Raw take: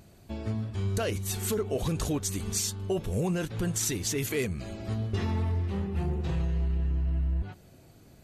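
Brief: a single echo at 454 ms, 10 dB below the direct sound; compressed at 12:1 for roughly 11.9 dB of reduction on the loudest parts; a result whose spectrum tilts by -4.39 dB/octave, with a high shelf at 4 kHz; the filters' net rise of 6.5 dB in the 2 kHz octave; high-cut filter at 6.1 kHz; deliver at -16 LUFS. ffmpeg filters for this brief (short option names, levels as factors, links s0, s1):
-af "lowpass=6100,equalizer=f=2000:t=o:g=6,highshelf=f=4000:g=8,acompressor=threshold=0.0141:ratio=12,aecho=1:1:454:0.316,volume=16.8"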